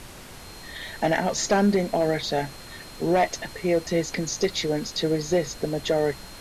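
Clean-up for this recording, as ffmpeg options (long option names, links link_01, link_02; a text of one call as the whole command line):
ffmpeg -i in.wav -af "adeclick=threshold=4,bandreject=frequency=4200:width=30,afftdn=noise_reduction=27:noise_floor=-42" out.wav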